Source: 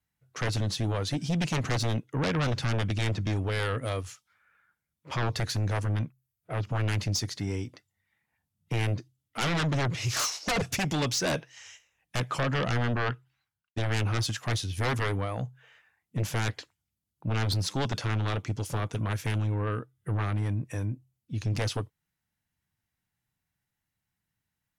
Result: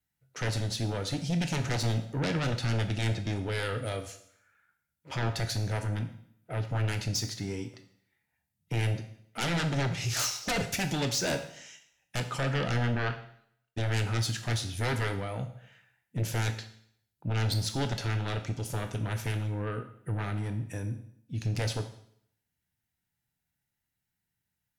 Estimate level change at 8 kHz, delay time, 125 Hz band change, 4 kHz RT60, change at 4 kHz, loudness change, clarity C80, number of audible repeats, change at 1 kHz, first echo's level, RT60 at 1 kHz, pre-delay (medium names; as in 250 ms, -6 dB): -0.5 dB, no echo, -1.5 dB, 0.65 s, -1.0 dB, -1.5 dB, 13.5 dB, no echo, -3.0 dB, no echo, 0.65 s, 18 ms